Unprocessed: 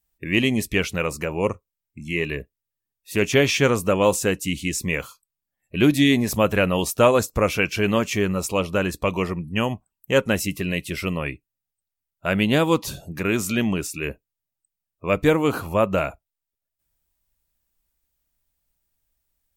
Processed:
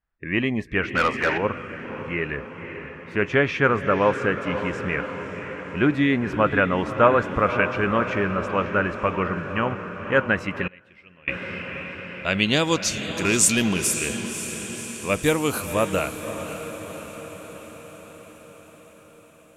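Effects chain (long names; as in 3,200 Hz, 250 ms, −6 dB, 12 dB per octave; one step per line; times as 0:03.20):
high-shelf EQ 2,800 Hz +9 dB
0:13.24–0:13.77: leveller curve on the samples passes 1
low-pass filter sweep 1,500 Hz → 11,000 Hz, 0:10.13–0:13.96
on a send: feedback delay with all-pass diffusion 544 ms, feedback 64%, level −9.5 dB
0:00.95–0:01.38: on the sum: mid-hump overdrive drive 17 dB, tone 4,500 Hz, clips at −7.5 dBFS
0:10.67–0:11.28: gate with flip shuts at −20 dBFS, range −26 dB
level −3.5 dB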